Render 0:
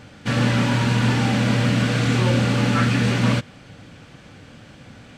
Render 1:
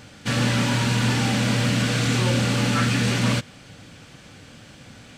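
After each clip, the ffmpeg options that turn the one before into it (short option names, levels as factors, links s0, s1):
-af "highshelf=f=3800:g=10,acontrast=46,volume=0.398"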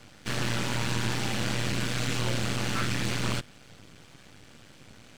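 -filter_complex "[0:a]acrossover=split=220|570|2000[s0][s1][s2][s3];[s1]alimiter=level_in=1.68:limit=0.0631:level=0:latency=1,volume=0.596[s4];[s0][s4][s2][s3]amix=inputs=4:normalize=0,aeval=exprs='max(val(0),0)':c=same,volume=0.708"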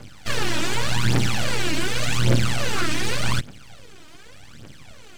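-af "aphaser=in_gain=1:out_gain=1:delay=3.3:decay=0.71:speed=0.86:type=triangular,volume=1.41"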